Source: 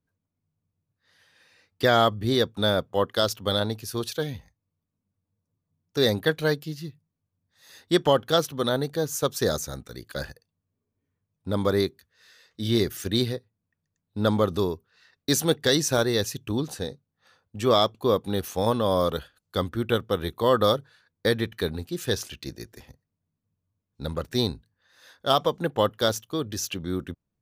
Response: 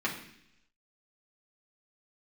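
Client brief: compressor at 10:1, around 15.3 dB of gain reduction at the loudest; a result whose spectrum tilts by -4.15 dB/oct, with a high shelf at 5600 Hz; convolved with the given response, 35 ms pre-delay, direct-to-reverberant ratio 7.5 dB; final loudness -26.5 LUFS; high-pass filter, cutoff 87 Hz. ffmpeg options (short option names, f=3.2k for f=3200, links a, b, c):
-filter_complex "[0:a]highpass=87,highshelf=f=5.6k:g=7.5,acompressor=threshold=-31dB:ratio=10,asplit=2[a][b];[1:a]atrim=start_sample=2205,adelay=35[c];[b][c]afir=irnorm=-1:irlink=0,volume=-15.5dB[d];[a][d]amix=inputs=2:normalize=0,volume=9.5dB"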